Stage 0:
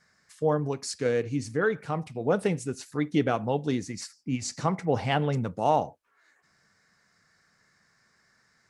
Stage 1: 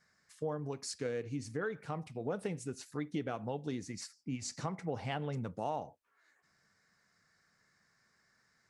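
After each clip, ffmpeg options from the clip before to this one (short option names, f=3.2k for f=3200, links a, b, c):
-af "acompressor=threshold=-28dB:ratio=3,volume=-6.5dB"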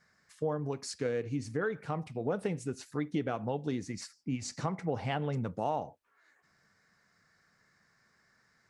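-af "highshelf=f=4.1k:g=-5.5,volume=4.5dB"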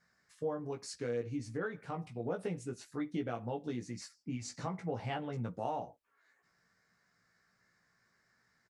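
-filter_complex "[0:a]asplit=2[a][b];[b]adelay=17,volume=-4dB[c];[a][c]amix=inputs=2:normalize=0,volume=-6dB"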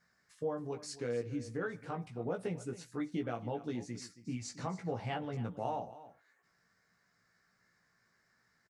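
-af "aecho=1:1:274:0.158"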